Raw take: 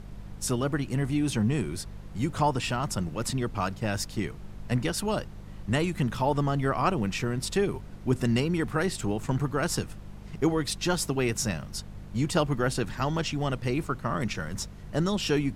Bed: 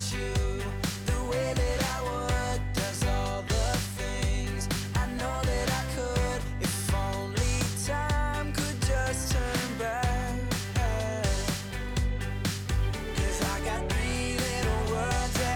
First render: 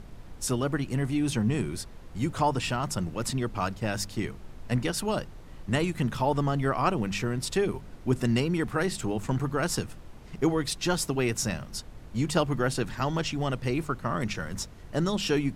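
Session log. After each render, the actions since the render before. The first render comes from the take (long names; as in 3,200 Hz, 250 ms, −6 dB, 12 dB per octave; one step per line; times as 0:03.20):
hum removal 50 Hz, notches 4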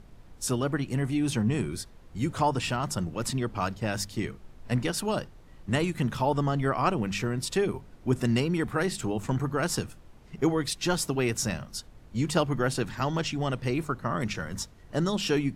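noise reduction from a noise print 6 dB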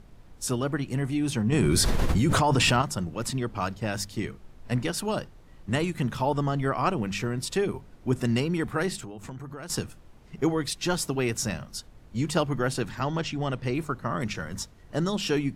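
0:01.52–0:02.82: envelope flattener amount 100%
0:08.96–0:09.70: downward compressor, threshold −36 dBFS
0:12.98–0:13.73: high-shelf EQ 6,400 Hz → 9,400 Hz −8.5 dB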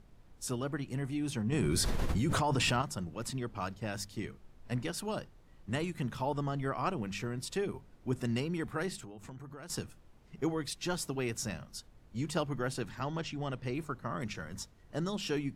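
level −8 dB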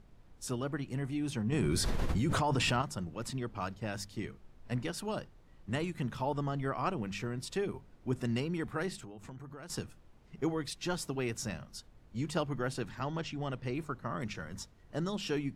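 high-shelf EQ 7,400 Hz −5 dB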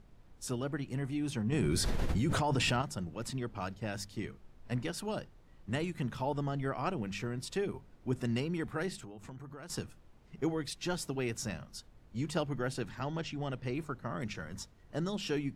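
dynamic equaliser 1,100 Hz, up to −5 dB, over −52 dBFS, Q 4.2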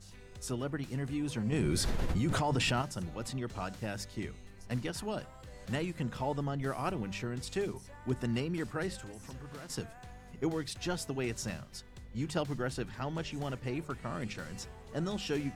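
mix in bed −22.5 dB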